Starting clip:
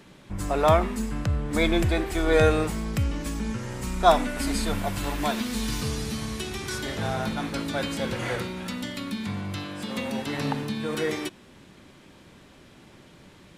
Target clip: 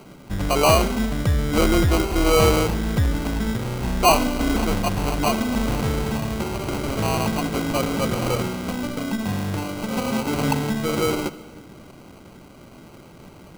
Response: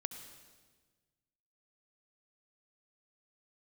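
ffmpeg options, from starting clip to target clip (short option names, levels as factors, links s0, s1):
-filter_complex "[0:a]acrusher=samples=25:mix=1:aa=0.000001,asoftclip=type=tanh:threshold=0.15,asplit=2[s0][s1];[1:a]atrim=start_sample=2205[s2];[s1][s2]afir=irnorm=-1:irlink=0,volume=0.631[s3];[s0][s3]amix=inputs=2:normalize=0,volume=1.41"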